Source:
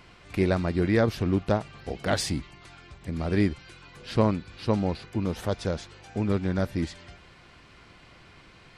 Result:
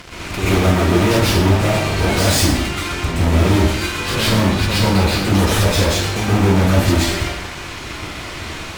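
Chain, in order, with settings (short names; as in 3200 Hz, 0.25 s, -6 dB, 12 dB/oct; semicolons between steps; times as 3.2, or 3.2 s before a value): fuzz box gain 45 dB, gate -52 dBFS; plate-style reverb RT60 0.78 s, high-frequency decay 0.8×, pre-delay 0.11 s, DRR -9 dB; gain -10 dB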